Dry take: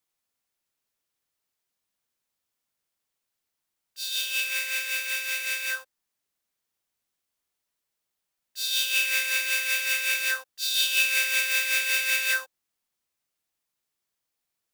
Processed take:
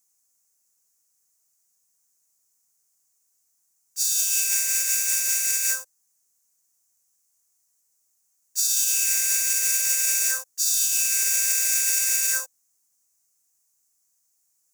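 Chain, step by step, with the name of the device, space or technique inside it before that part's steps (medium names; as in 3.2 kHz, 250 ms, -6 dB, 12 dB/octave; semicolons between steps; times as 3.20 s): over-bright horn tweeter (resonant high shelf 4.8 kHz +12 dB, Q 3; peak limiter -11.5 dBFS, peak gain reduction 9.5 dB)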